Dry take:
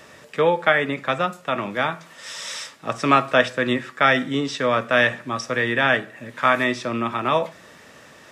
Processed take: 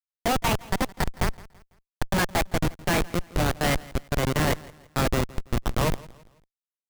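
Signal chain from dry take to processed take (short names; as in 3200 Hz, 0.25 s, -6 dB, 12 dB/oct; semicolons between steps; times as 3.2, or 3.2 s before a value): speed glide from 153% -> 88%; Schmitt trigger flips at -16 dBFS; feedback echo 0.166 s, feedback 38%, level -21 dB; gain +1 dB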